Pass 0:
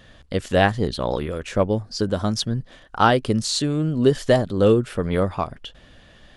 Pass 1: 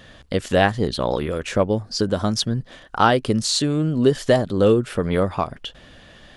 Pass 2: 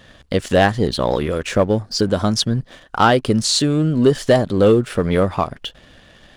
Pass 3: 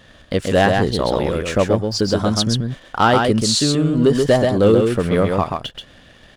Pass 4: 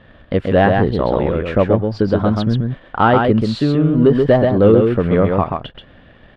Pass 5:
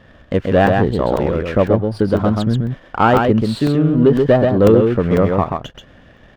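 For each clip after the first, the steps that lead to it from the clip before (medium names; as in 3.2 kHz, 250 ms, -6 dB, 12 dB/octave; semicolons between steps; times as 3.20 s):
bass shelf 77 Hz -6 dB; in parallel at 0 dB: compression, threshold -25 dBFS, peak gain reduction 13.5 dB; on the sum: trim -1.5 dB
waveshaping leveller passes 1
delay 132 ms -4 dB; trim -1 dB
distance through air 470 m; trim +3.5 dB
crackling interface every 0.50 s, samples 128, zero, from 0.67 s; sliding maximum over 3 samples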